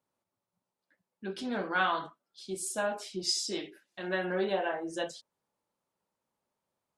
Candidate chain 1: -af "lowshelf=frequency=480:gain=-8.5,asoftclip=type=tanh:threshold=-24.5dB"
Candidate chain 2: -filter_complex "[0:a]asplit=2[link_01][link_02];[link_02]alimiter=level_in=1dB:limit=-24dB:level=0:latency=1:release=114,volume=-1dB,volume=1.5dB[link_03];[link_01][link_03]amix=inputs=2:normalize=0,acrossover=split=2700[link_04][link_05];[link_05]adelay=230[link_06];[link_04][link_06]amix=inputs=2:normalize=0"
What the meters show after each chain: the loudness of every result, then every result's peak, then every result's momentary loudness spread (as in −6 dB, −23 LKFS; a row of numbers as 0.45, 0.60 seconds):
−36.0, −28.5 LKFS; −24.5, −11.5 dBFS; 16, 12 LU